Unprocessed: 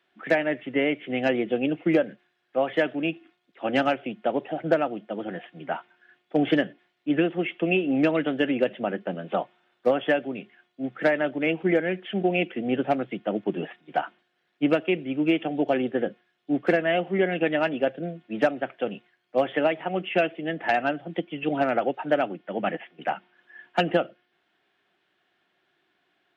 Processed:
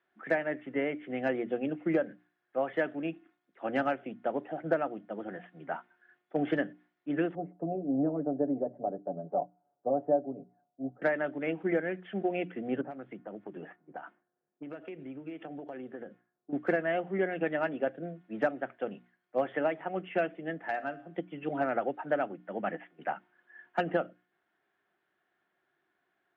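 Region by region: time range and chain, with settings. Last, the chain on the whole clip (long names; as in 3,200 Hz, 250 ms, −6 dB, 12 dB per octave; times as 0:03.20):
0:07.35–0:11.02: transistor ladder low-pass 810 Hz, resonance 55% + low-shelf EQ 470 Hz +9 dB + comb filter 7 ms, depth 68%
0:12.81–0:16.53: low-pass that shuts in the quiet parts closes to 530 Hz, open at −20 dBFS + downward compressor 8 to 1, threshold −31 dBFS
0:20.58–0:21.18: high-shelf EQ 4,100 Hz +5.5 dB + tuned comb filter 54 Hz, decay 0.64 s, harmonics odd, mix 50%
whole clip: high shelf with overshoot 2,200 Hz −7 dB, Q 1.5; mains-hum notches 60/120/180/240/300 Hz; level −7 dB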